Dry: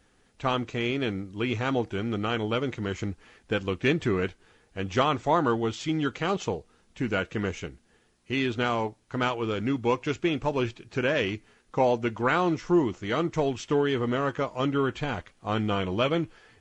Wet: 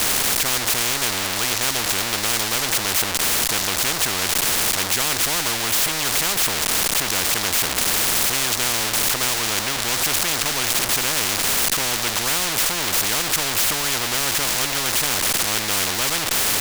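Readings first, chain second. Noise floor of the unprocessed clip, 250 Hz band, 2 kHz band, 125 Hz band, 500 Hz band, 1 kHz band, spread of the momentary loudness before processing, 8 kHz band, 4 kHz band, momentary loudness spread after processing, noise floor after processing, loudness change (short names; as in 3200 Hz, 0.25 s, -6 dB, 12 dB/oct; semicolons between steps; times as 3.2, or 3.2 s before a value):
-65 dBFS, -5.0 dB, +9.5 dB, -2.5 dB, -3.5 dB, +3.5 dB, 8 LU, n/a, +17.0 dB, 2 LU, -25 dBFS, +9.5 dB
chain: zero-crossing step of -29 dBFS; spectral compressor 10:1; gain +4 dB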